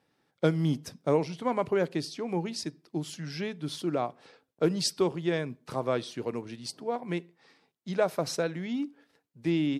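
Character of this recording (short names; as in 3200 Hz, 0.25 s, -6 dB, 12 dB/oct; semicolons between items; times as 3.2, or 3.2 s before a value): noise floor -77 dBFS; spectral tilt -5.5 dB/oct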